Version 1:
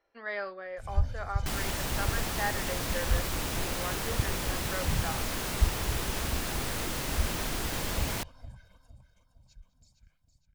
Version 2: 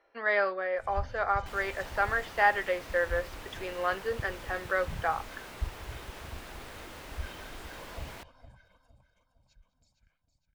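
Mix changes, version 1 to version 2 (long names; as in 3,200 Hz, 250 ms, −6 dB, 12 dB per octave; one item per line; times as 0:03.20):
speech +9.0 dB
second sound −9.0 dB
master: add bass and treble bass −9 dB, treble −9 dB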